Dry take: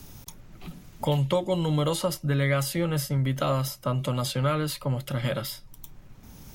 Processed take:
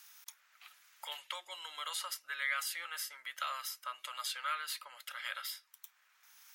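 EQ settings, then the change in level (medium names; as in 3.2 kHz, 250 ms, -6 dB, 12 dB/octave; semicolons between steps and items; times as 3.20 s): ladder high-pass 1.2 kHz, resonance 35%; +1.0 dB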